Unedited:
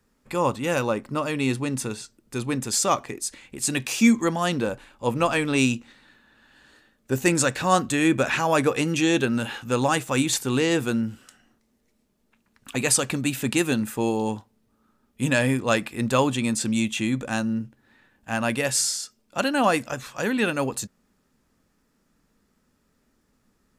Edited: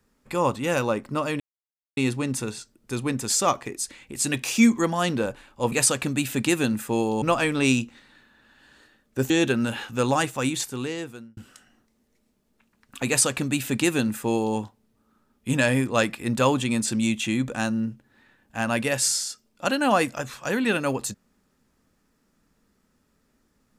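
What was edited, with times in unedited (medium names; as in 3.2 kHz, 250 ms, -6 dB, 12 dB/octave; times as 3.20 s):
1.40 s: insert silence 0.57 s
7.23–9.03 s: delete
9.83–11.10 s: fade out
12.80–14.30 s: copy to 5.15 s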